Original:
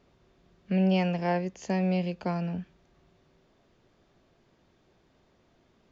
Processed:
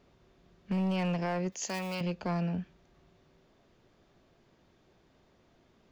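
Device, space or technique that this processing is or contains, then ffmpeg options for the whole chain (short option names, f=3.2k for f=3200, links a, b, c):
limiter into clipper: -filter_complex "[0:a]alimiter=limit=-21dB:level=0:latency=1,asoftclip=type=hard:threshold=-25.5dB,asettb=1/sr,asplit=3[a][b][c];[a]atrim=end=1.524[d];[b]atrim=start=1.52:end=2.01,asetpts=PTS-STARTPTS,afade=t=in:d=0.004:c=qsin,afade=t=out:st=0.486:d=0.004:c=qsin,aemphasis=mode=production:type=riaa[e];[c]atrim=start=2.006[f];[d][e]acrossfade=d=0.004:c1=hsin:c2=qsin[g];[g][f]acrossfade=d=0.004:c1=qsin:c2=hsin"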